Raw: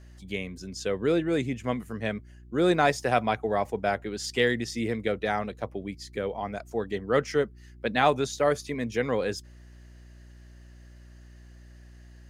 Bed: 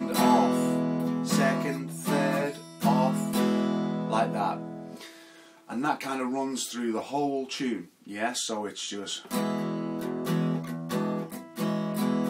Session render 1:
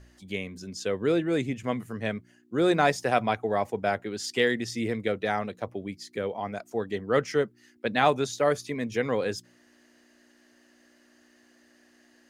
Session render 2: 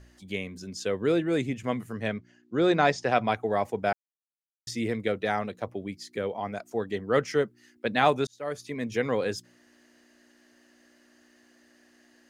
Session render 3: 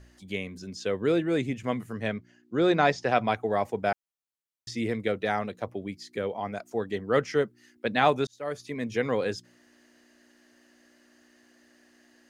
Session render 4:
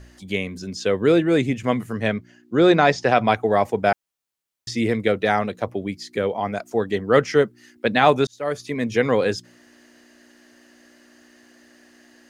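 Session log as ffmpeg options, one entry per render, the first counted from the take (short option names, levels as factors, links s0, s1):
-af "bandreject=f=60:t=h:w=4,bandreject=f=120:t=h:w=4,bandreject=f=180:t=h:w=4"
-filter_complex "[0:a]asettb=1/sr,asplit=3[s0][s1][s2];[s0]atrim=end=2.084[s3];[s1]atrim=start=2.08:end=3.27,asetpts=PTS-STARTPTS,afade=t=in:d=0.004:c=qsin,afade=t=out:st=1.186:d=0.004:c=qsin,lowpass=f=6500:w=0.5412,lowpass=f=6500:w=1.3066[s4];[s2]atrim=start=3.266[s5];[s3][s4]acrossfade=d=0.004:c1=hsin:c2=qsin[s6];[s6][s5]acrossfade=d=0.004:c1=qsin:c2=hsin,asplit=4[s7][s8][s9][s10];[s7]atrim=end=3.93,asetpts=PTS-STARTPTS,afade=t=out:st=3.926:d=0.004:c=hsin[s11];[s8]atrim=start=3.93:end=4.67,asetpts=PTS-STARTPTS,volume=0[s12];[s9]atrim=start=4.67:end=8.27,asetpts=PTS-STARTPTS,afade=t=in:d=0.004:c=hsin,afade=t=out:st=3.596:d=0.004:c=hsin[s13];[s10]atrim=start=8.27,asetpts=PTS-STARTPTS,afade=t=in:d=0.62[s14];[s11][s12][s13][s14]concat=n=4:v=0:a=1"
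-filter_complex "[0:a]acrossover=split=6400[s0][s1];[s1]acompressor=threshold=0.00178:ratio=4:attack=1:release=60[s2];[s0][s2]amix=inputs=2:normalize=0"
-af "volume=2.51,alimiter=limit=0.708:level=0:latency=1"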